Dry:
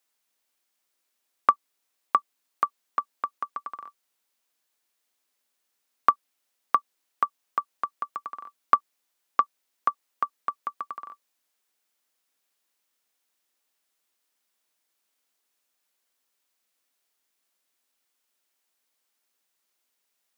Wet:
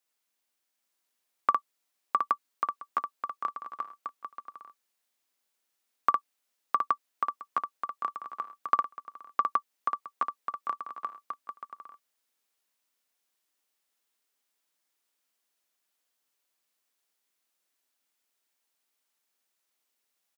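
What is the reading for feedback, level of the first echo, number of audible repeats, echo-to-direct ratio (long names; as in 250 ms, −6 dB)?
repeats not evenly spaced, −4.0 dB, 3, −0.5 dB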